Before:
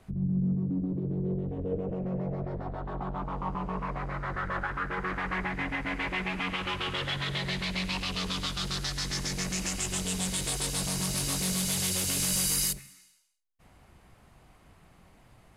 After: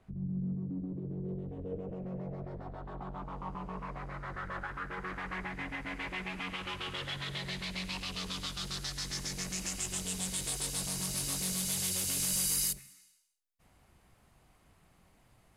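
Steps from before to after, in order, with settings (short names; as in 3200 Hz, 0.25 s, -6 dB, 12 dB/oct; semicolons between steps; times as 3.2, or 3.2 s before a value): high shelf 5000 Hz -8.5 dB, from 1.29 s +6 dB; gain -7.5 dB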